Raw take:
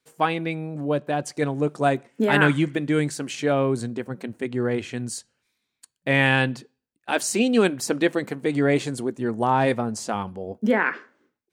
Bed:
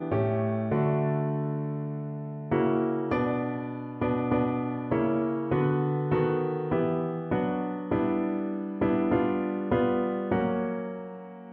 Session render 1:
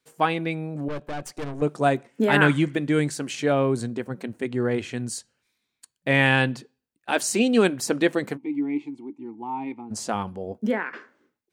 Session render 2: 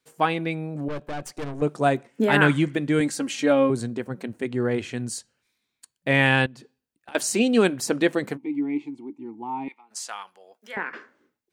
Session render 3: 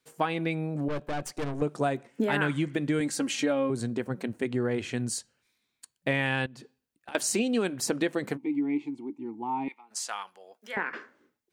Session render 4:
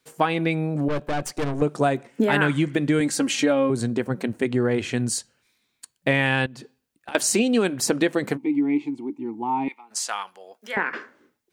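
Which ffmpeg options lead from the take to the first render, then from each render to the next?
ffmpeg -i in.wav -filter_complex "[0:a]asettb=1/sr,asplit=3[link_01][link_02][link_03];[link_01]atrim=end=0.884[link_04];[link_02]atrim=start=0.88:end=1.62,asetpts=PTS-STARTPTS,afade=type=in:duration=0.004:curve=qsin,afade=type=out:start_time=0.736:duration=0.004:curve=qsin,aeval=exprs='(tanh(28.2*val(0)+0.75)-tanh(0.75))/28.2':channel_layout=same[link_05];[link_03]atrim=start=1.616[link_06];[link_04][link_05]acrossfade=duration=0.004:curve1=hsin:curve2=qsin[link_07];[link_07][link_06]acrossfade=duration=0.004:curve1=qsin:curve2=hsin,asplit=3[link_08][link_09][link_10];[link_08]afade=type=out:start_time=8.36:duration=0.02[link_11];[link_09]asplit=3[link_12][link_13][link_14];[link_12]bandpass=frequency=300:width_type=q:width=8,volume=0dB[link_15];[link_13]bandpass=frequency=870:width_type=q:width=8,volume=-6dB[link_16];[link_14]bandpass=frequency=2240:width_type=q:width=8,volume=-9dB[link_17];[link_15][link_16][link_17]amix=inputs=3:normalize=0,afade=type=in:start_time=8.36:duration=0.02,afade=type=out:start_time=9.9:duration=0.02[link_18];[link_10]afade=type=in:start_time=9.9:duration=0.02[link_19];[link_11][link_18][link_19]amix=inputs=3:normalize=0,asplit=2[link_20][link_21];[link_20]atrim=end=10.93,asetpts=PTS-STARTPTS,afade=type=out:start_time=10.53:duration=0.4:silence=0.188365[link_22];[link_21]atrim=start=10.93,asetpts=PTS-STARTPTS,afade=type=in:duration=0.004:curve=hsin:silence=0.188365[link_23];[link_22][link_23]concat=n=2:v=0:a=1" out.wav
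ffmpeg -i in.wav -filter_complex "[0:a]asettb=1/sr,asplit=3[link_01][link_02][link_03];[link_01]atrim=end=3.004[link_04];[link_02]atrim=start=3:end=3.7,asetpts=PTS-STARTPTS,afade=type=in:duration=0.004:curve=qsin,afade=type=out:start_time=0.696:duration=0.004:curve=qsin,aecho=1:1:3.7:0.71,atrim=end_sample=30870[link_05];[link_03]atrim=start=3.696[link_06];[link_04][link_05]acrossfade=duration=0.004:curve1=hsin:curve2=qsin[link_07];[link_07][link_06]acrossfade=duration=0.004:curve1=qsin:curve2=hsin,asettb=1/sr,asplit=3[link_08][link_09][link_10];[link_08]atrim=end=6.464[link_11];[link_09]atrim=start=6.46:end=7.15,asetpts=PTS-STARTPTS,afade=type=in:duration=0.004:curve=qsin,afade=type=out:start_time=0.686:duration=0.004:curve=qsin,acompressor=threshold=-40dB:ratio=12:attack=3.2:release=140:knee=1:detection=peak[link_12];[link_10]atrim=start=7.146[link_13];[link_11][link_12]acrossfade=duration=0.004:curve1=hsin:curve2=qsin[link_14];[link_14][link_13]acrossfade=duration=0.004:curve1=qsin:curve2=hsin,asettb=1/sr,asplit=3[link_15][link_16][link_17];[link_15]atrim=end=9.684[link_18];[link_16]atrim=start=9.68:end=10.77,asetpts=PTS-STARTPTS,afade=type=in:duration=0.004:curve=qsin,afade=type=out:start_time=1.086:duration=0.004:curve=qsin,highpass=1400[link_19];[link_17]atrim=start=10.766[link_20];[link_18][link_19]acrossfade=duration=0.004:curve1=hsin:curve2=qsin[link_21];[link_21][link_20]acrossfade=duration=0.004:curve1=qsin:curve2=hsin" out.wav
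ffmpeg -i in.wav -af "acompressor=threshold=-24dB:ratio=5" out.wav
ffmpeg -i in.wav -af "volume=6.5dB" out.wav

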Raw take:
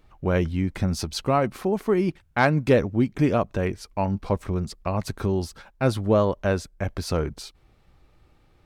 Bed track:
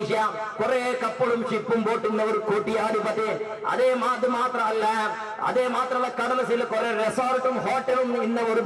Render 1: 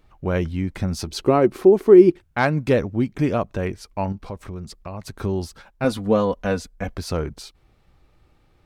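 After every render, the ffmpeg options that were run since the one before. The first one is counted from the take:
ffmpeg -i in.wav -filter_complex "[0:a]asettb=1/sr,asplit=3[link_01][link_02][link_03];[link_01]atrim=end=1.074[link_04];[link_02]atrim=start=1.07:end=2.24,asetpts=PTS-STARTPTS,afade=type=in:duration=0.004:curve=qsin,afade=type=out:start_time=1.166:duration=0.004:curve=qsin,equalizer=frequency=360:width=2.1:gain=15[link_05];[link_03]atrim=start=2.236[link_06];[link_04][link_05]acrossfade=duration=0.004:curve1=hsin:curve2=qsin[link_07];[link_07][link_06]acrossfade=duration=0.004:curve1=qsin:curve2=hsin,asettb=1/sr,asplit=3[link_08][link_09][link_10];[link_08]atrim=end=4.124[link_11];[link_09]atrim=start=4.12:end=5.18,asetpts=PTS-STARTPTS,afade=type=in:duration=0.004:curve=qsin,afade=type=out:start_time=1.056:duration=0.004:curve=qsin,acompressor=threshold=-34dB:ratio=2:attack=3.2:release=140:knee=1:detection=peak[link_12];[link_10]atrim=start=5.176[link_13];[link_11][link_12]acrossfade=duration=0.004:curve1=hsin:curve2=qsin[link_14];[link_14][link_13]acrossfade=duration=0.004:curve1=qsin:curve2=hsin,asettb=1/sr,asplit=3[link_15][link_16][link_17];[link_15]atrim=end=5.844[link_18];[link_16]atrim=start=5.84:end=6.95,asetpts=PTS-STARTPTS,afade=type=in:duration=0.004:curve=qsin,afade=type=out:start_time=1.106:duration=0.004:curve=qsin,aecho=1:1:4.1:0.65,atrim=end_sample=48951[link_19];[link_17]atrim=start=6.946[link_20];[link_18][link_19]acrossfade=duration=0.004:curve1=hsin:curve2=qsin[link_21];[link_21][link_20]acrossfade=duration=0.004:curve1=qsin:curve2=hsin" out.wav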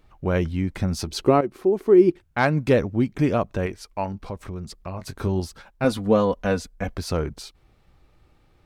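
ffmpeg -i in.wav -filter_complex "[0:a]asettb=1/sr,asplit=3[link_01][link_02][link_03];[link_01]atrim=end=3.664[link_04];[link_02]atrim=start=3.66:end=4.13,asetpts=PTS-STARTPTS,afade=type=in:duration=0.004:curve=qsin,afade=type=out:start_time=0.466:duration=0.004:curve=qsin,equalizer=frequency=120:width=0.45:gain=-7[link_05];[link_03]atrim=start=4.126[link_06];[link_04][link_05]acrossfade=duration=0.004:curve1=hsin:curve2=qsin[link_07];[link_07][link_06]acrossfade=duration=0.004:curve1=qsin:curve2=hsin,asettb=1/sr,asplit=3[link_08][link_09][link_10];[link_08]atrim=end=4.784[link_11];[link_09]atrim=start=4.78:end=5.4,asetpts=PTS-STARTPTS,afade=type=in:duration=0.004:curve=qsin,afade=type=out:start_time=0.616:duration=0.004:curve=qsin,asplit=2[link_12][link_13];[link_13]adelay=22,volume=-9dB[link_14];[link_12][link_14]amix=inputs=2:normalize=0,atrim=end_sample=27342[link_15];[link_10]atrim=start=5.396[link_16];[link_11][link_15]acrossfade=duration=0.004:curve1=hsin:curve2=qsin[link_17];[link_17][link_16]acrossfade=duration=0.004:curve1=qsin:curve2=hsin,asplit=2[link_18][link_19];[link_18]atrim=end=1.41,asetpts=PTS-STARTPTS,afade=type=out:start_time=1.406:duration=0.004:curve=hsin:silence=0.251189[link_20];[link_19]atrim=start=1.41,asetpts=PTS-STARTPTS,afade=type=in:duration=1.15:silence=0.251189[link_21];[link_20][link_21]concat=n=2:v=0:a=1" out.wav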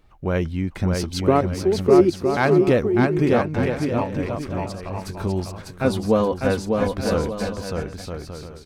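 ffmpeg -i in.wav -af "aecho=1:1:600|960|1176|1306|1383:0.631|0.398|0.251|0.158|0.1" out.wav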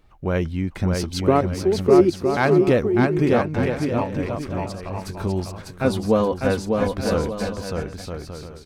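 ffmpeg -i in.wav -af anull out.wav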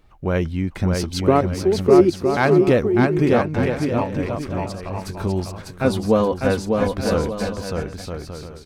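ffmpeg -i in.wav -af "volume=1.5dB" out.wav

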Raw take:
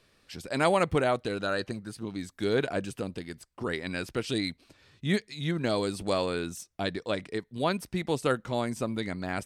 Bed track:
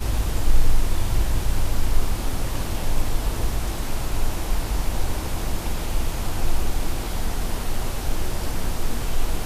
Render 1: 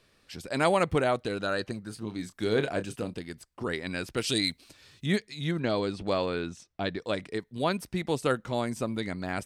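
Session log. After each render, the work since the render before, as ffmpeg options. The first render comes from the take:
ffmpeg -i in.wav -filter_complex "[0:a]asettb=1/sr,asplit=3[link_01][link_02][link_03];[link_01]atrim=end=1.884[link_04];[link_02]atrim=start=1.88:end=3.14,asetpts=PTS-STARTPTS,afade=type=in:duration=0.004:curve=qsin,afade=type=out:start_time=1.256:duration=0.004:curve=qsin,asplit=2[link_05][link_06];[link_06]adelay=28,volume=-10dB[link_07];[link_05][link_07]amix=inputs=2:normalize=0,atrim=end_sample=55566[link_08];[link_03]atrim=start=3.136[link_09];[link_04][link_08]acrossfade=duration=0.004:curve1=hsin:curve2=qsin[link_10];[link_10][link_09]acrossfade=duration=0.004:curve1=qsin:curve2=hsin,asettb=1/sr,asplit=3[link_11][link_12][link_13];[link_11]atrim=end=4.174[link_14];[link_12]atrim=start=4.17:end=5.06,asetpts=PTS-STARTPTS,afade=type=in:duration=0.004:curve=qsin,afade=type=out:start_time=0.886:duration=0.004:curve=qsin,highshelf=frequency=3100:gain=11[link_15];[link_13]atrim=start=5.056[link_16];[link_14][link_15]acrossfade=duration=0.004:curve1=hsin:curve2=qsin[link_17];[link_17][link_16]acrossfade=duration=0.004:curve1=qsin:curve2=hsin,asettb=1/sr,asplit=3[link_18][link_19][link_20];[link_18]atrim=end=5.604[link_21];[link_19]atrim=start=5.6:end=7,asetpts=PTS-STARTPTS,afade=type=in:duration=0.004:curve=qsin,afade=type=out:start_time=1.396:duration=0.004:curve=qsin,lowpass=4400[link_22];[link_20]atrim=start=6.996[link_23];[link_21][link_22]acrossfade=duration=0.004:curve1=hsin:curve2=qsin[link_24];[link_24][link_23]acrossfade=duration=0.004:curve1=qsin:curve2=hsin" out.wav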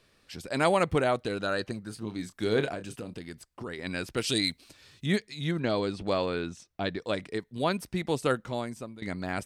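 ffmpeg -i in.wav -filter_complex "[0:a]asettb=1/sr,asplit=3[link_01][link_02][link_03];[link_01]atrim=end=2.744[link_04];[link_02]atrim=start=2.74:end=3.79,asetpts=PTS-STARTPTS,afade=type=in:duration=0.004:curve=qsin,afade=type=out:start_time=1.046:duration=0.004:curve=qsin,acompressor=threshold=-35dB:ratio=3:attack=3.2:release=140:knee=1:detection=peak[link_05];[link_03]atrim=start=3.786[link_06];[link_04][link_05]acrossfade=duration=0.004:curve1=hsin:curve2=qsin[link_07];[link_07][link_06]acrossfade=duration=0.004:curve1=qsin:curve2=hsin,asplit=2[link_08][link_09];[link_08]atrim=end=9.02,asetpts=PTS-STARTPTS,afade=type=out:start_time=8.34:duration=0.68:silence=0.133352[link_10];[link_09]atrim=start=9.02,asetpts=PTS-STARTPTS,afade=type=in:duration=0.004:curve=hsin:silence=0.133352[link_11];[link_10][link_11]concat=n=2:v=0:a=1" out.wav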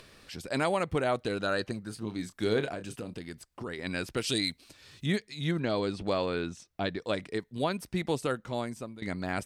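ffmpeg -i in.wav -af "acompressor=mode=upward:threshold=-45dB:ratio=2.5,alimiter=limit=-17dB:level=0:latency=1:release=299" out.wav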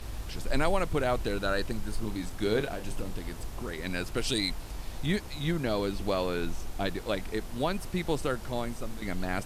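ffmpeg -i in.wav -i bed.wav -filter_complex "[1:a]volume=-15dB[link_01];[0:a][link_01]amix=inputs=2:normalize=0" out.wav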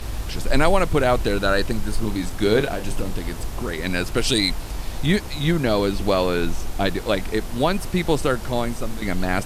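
ffmpeg -i in.wav -af "volume=9.5dB" out.wav

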